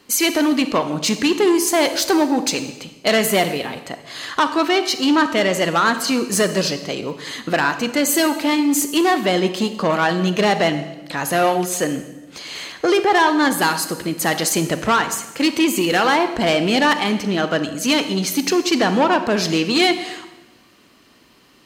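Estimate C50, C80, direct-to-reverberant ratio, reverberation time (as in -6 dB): 11.0 dB, 13.0 dB, 9.5 dB, 1.1 s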